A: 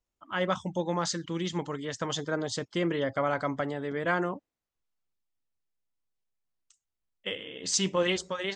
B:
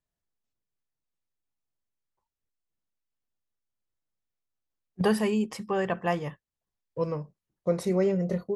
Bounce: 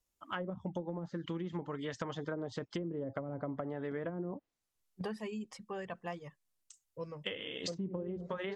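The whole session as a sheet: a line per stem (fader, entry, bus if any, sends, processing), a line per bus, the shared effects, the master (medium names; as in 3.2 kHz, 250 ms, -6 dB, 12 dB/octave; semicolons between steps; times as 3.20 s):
-0.5 dB, 0.00 s, no send, none
-12.5 dB, 0.00 s, no send, level-controlled noise filter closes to 610 Hz, open at -25 dBFS; reverb removal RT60 0.61 s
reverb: none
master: low-pass that closes with the level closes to 320 Hz, closed at -24.5 dBFS; treble shelf 6.2 kHz +12 dB; compression, threshold -35 dBFS, peak gain reduction 9.5 dB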